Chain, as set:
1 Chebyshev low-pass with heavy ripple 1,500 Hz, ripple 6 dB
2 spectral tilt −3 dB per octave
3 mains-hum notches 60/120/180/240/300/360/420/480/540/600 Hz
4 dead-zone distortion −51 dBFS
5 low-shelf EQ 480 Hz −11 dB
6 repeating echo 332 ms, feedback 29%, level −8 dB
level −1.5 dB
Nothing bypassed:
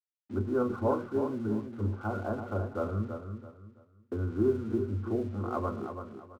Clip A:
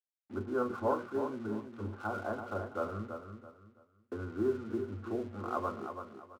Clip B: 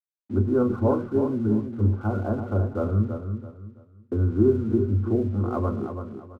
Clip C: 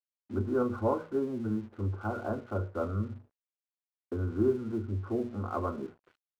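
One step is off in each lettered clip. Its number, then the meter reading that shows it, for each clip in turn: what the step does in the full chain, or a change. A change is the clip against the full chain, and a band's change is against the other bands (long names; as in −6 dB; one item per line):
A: 2, 125 Hz band −8.5 dB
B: 5, 125 Hz band +6.5 dB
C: 6, change in momentary loudness spread −2 LU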